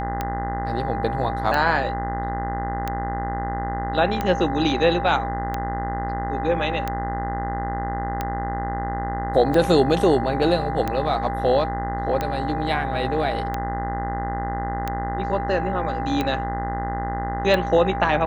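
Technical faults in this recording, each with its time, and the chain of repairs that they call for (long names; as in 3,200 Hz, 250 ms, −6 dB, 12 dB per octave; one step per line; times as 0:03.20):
mains buzz 60 Hz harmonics 34 −29 dBFS
scratch tick 45 rpm −11 dBFS
whistle 800 Hz −27 dBFS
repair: click removal
hum removal 60 Hz, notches 34
notch filter 800 Hz, Q 30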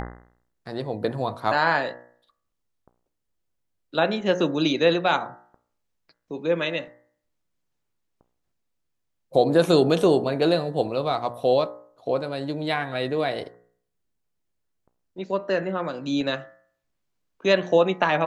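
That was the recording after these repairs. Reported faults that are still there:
none of them is left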